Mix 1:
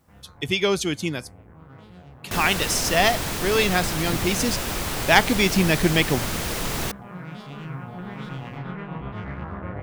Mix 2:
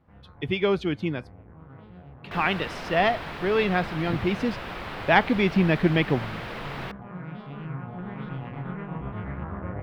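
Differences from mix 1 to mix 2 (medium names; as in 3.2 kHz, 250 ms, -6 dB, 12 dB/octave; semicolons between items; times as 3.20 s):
second sound: add bass shelf 430 Hz -12 dB; master: add distance through air 410 m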